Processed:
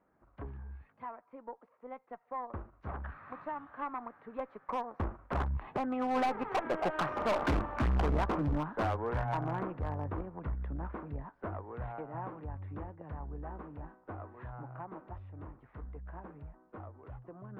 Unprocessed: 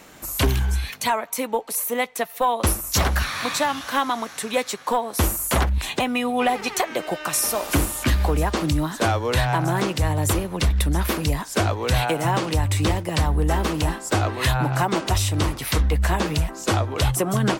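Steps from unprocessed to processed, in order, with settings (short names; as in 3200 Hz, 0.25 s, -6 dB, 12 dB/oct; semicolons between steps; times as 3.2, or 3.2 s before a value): Doppler pass-by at 7.28, 13 m/s, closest 7 m; LPF 1500 Hz 24 dB/oct; added harmonics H 7 -34 dB, 8 -23 dB, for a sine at -12.5 dBFS; dynamic EQ 1000 Hz, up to +3 dB, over -51 dBFS, Q 1.5; hard clip -26.5 dBFS, distortion -6 dB; Doppler distortion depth 0.18 ms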